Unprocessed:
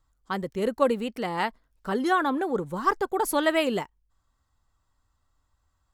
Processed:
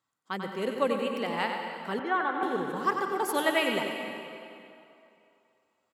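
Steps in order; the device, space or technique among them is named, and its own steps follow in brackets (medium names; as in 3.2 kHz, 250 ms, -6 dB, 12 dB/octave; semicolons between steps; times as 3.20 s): PA in a hall (high-pass 150 Hz 24 dB/octave; peaking EQ 2.5 kHz +6 dB 1.1 oct; delay 93 ms -7 dB; reverberation RT60 2.7 s, pre-delay 109 ms, DRR 4.5 dB); 1.99–2.43 s: three-band isolator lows -12 dB, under 360 Hz, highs -23 dB, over 2.8 kHz; trim -5.5 dB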